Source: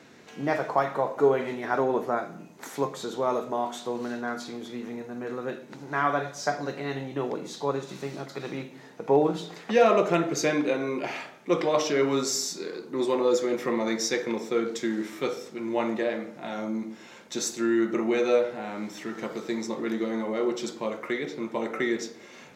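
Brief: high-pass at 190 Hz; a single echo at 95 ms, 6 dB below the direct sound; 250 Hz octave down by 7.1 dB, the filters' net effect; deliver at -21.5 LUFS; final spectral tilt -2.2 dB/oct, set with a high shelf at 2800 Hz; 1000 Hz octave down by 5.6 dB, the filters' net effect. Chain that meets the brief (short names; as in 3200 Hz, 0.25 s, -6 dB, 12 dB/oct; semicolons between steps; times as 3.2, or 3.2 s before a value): HPF 190 Hz; bell 250 Hz -8.5 dB; bell 1000 Hz -8 dB; high shelf 2800 Hz +4.5 dB; echo 95 ms -6 dB; gain +8.5 dB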